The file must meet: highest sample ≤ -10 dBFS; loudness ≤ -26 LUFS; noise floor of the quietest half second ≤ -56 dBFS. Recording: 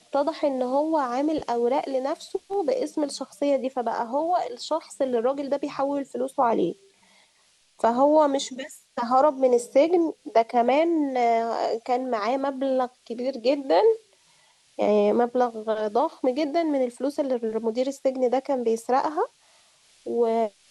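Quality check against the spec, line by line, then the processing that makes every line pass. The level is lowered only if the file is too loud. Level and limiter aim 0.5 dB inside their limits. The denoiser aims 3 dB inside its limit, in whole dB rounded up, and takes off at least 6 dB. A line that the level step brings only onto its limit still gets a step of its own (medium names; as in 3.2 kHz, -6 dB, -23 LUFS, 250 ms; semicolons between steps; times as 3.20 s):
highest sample -8.0 dBFS: fail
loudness -24.5 LUFS: fail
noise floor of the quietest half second -63 dBFS: pass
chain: trim -2 dB; peak limiter -10.5 dBFS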